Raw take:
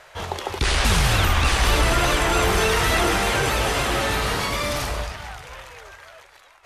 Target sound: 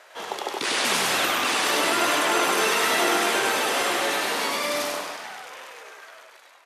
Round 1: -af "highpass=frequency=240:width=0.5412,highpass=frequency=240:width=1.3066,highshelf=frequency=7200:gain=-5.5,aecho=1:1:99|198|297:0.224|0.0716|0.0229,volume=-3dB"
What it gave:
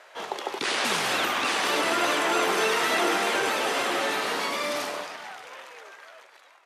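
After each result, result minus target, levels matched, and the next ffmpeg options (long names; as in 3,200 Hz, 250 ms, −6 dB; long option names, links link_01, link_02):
echo-to-direct −10.5 dB; 8,000 Hz band −3.0 dB
-af "highpass=frequency=240:width=0.5412,highpass=frequency=240:width=1.3066,highshelf=frequency=7200:gain=-5.5,aecho=1:1:99|198|297|396:0.75|0.24|0.0768|0.0246,volume=-3dB"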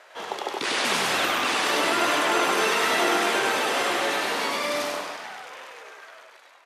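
8,000 Hz band −3.0 dB
-af "highpass=frequency=240:width=0.5412,highpass=frequency=240:width=1.3066,highshelf=frequency=7200:gain=2.5,aecho=1:1:99|198|297|396:0.75|0.24|0.0768|0.0246,volume=-3dB"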